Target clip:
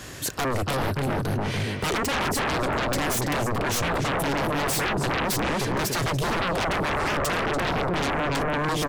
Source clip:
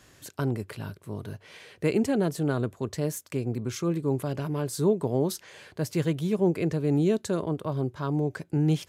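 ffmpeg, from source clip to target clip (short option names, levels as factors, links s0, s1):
-filter_complex "[0:a]asplit=2[s0][s1];[s1]adelay=288,lowpass=f=1900:p=1,volume=0.708,asplit=2[s2][s3];[s3]adelay=288,lowpass=f=1900:p=1,volume=0.41,asplit=2[s4][s5];[s5]adelay=288,lowpass=f=1900:p=1,volume=0.41,asplit=2[s6][s7];[s7]adelay=288,lowpass=f=1900:p=1,volume=0.41,asplit=2[s8][s9];[s9]adelay=288,lowpass=f=1900:p=1,volume=0.41[s10];[s0][s2][s4][s6][s8][s10]amix=inputs=6:normalize=0,acompressor=threshold=0.0501:ratio=3,aeval=exprs='0.141*sin(PI/2*7.94*val(0)/0.141)':c=same,volume=0.562"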